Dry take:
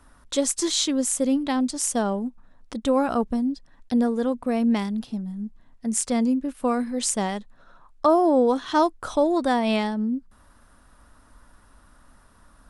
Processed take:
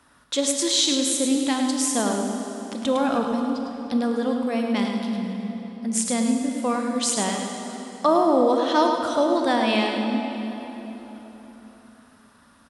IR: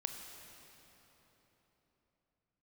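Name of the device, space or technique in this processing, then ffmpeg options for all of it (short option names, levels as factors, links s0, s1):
PA in a hall: -filter_complex "[0:a]highpass=110,equalizer=f=3200:t=o:w=2:g=6,aecho=1:1:106:0.447[s0];[1:a]atrim=start_sample=2205[s1];[s0][s1]afir=irnorm=-1:irlink=0"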